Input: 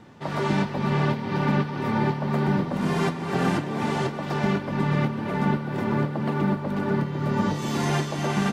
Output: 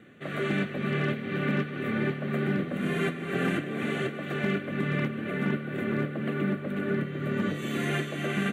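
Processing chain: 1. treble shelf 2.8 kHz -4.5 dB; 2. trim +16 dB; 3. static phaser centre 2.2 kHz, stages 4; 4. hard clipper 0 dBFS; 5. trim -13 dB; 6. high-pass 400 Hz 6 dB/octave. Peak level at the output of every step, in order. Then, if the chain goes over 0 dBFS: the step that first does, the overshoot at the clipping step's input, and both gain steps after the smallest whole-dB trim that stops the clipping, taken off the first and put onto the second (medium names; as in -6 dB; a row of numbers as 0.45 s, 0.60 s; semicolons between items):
-11.0 dBFS, +5.0 dBFS, +3.5 dBFS, 0.0 dBFS, -13.0 dBFS, -15.0 dBFS; step 2, 3.5 dB; step 2 +12 dB, step 5 -9 dB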